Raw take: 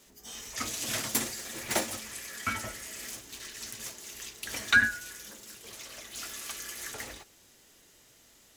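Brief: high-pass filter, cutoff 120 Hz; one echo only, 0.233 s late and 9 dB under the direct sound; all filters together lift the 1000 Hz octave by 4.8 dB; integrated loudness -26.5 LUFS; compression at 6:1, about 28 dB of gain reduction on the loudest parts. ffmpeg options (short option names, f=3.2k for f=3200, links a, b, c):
-af "highpass=120,equalizer=f=1k:t=o:g=7.5,acompressor=threshold=-46dB:ratio=6,aecho=1:1:233:0.355,volume=20.5dB"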